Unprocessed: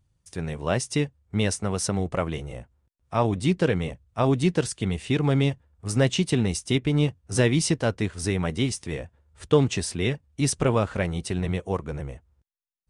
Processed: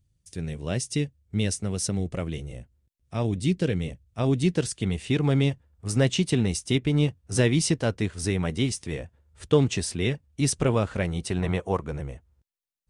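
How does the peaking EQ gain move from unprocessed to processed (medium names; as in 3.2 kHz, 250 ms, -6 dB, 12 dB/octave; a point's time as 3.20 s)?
peaking EQ 1 kHz 1.7 oct
3.81 s -13 dB
4.93 s -3.5 dB
11.18 s -3.5 dB
11.51 s +8 dB
12.00 s -2.5 dB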